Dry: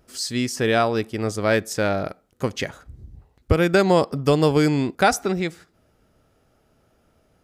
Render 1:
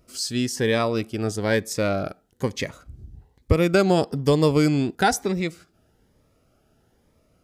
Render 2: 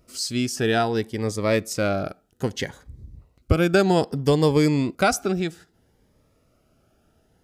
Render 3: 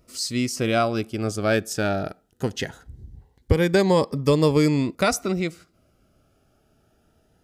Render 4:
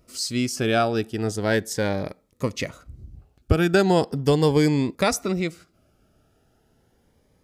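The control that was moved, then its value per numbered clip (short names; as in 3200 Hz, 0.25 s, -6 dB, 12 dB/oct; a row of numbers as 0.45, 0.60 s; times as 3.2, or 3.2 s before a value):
cascading phaser, rate: 1.1, 0.62, 0.2, 0.38 Hz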